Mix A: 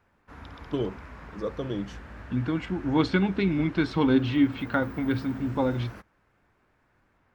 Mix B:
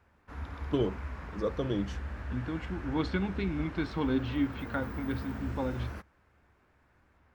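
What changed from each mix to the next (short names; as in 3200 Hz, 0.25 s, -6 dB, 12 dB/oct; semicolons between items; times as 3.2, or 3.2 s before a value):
second voice -8.0 dB; master: add bell 71 Hz +14.5 dB 0.25 oct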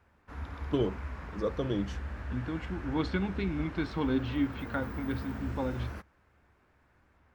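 none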